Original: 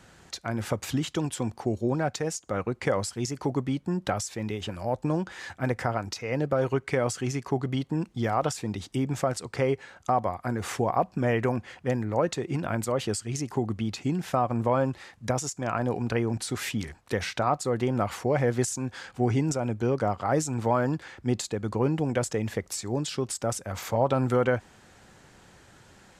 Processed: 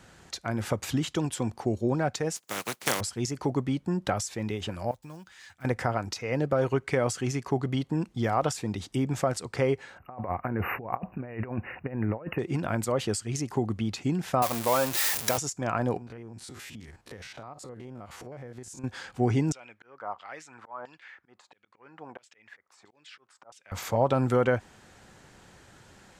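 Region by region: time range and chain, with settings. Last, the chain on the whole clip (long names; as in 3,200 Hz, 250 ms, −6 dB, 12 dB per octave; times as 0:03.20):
0:02.35–0:02.99: compressing power law on the bin magnitudes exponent 0.28 + high-pass filter 120 Hz 24 dB per octave + expander for the loud parts, over −40 dBFS
0:04.91–0:05.65: one scale factor per block 7 bits + guitar amp tone stack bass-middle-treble 5-5-5
0:09.98–0:12.39: compressor whose output falls as the input rises −31 dBFS, ratio −0.5 + linear-phase brick-wall band-stop 2,900–12,000 Hz
0:14.42–0:15.38: converter with a step at zero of −29.5 dBFS + RIAA equalisation recording
0:15.97–0:18.84: spectrum averaged block by block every 50 ms + downward compressor 4 to 1, threshold −42 dBFS
0:19.52–0:23.72: volume swells 305 ms + auto-filter band-pass saw down 1.5 Hz 870–3,300 Hz
whole clip: no processing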